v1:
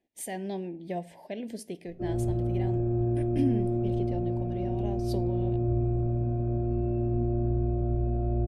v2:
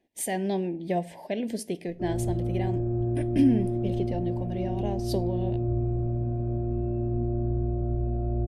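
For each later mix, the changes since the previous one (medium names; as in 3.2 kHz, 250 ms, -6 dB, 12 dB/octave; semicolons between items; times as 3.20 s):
speech +6.5 dB; background: add distance through air 310 m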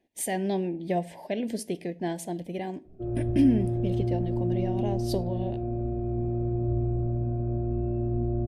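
background: entry +1.00 s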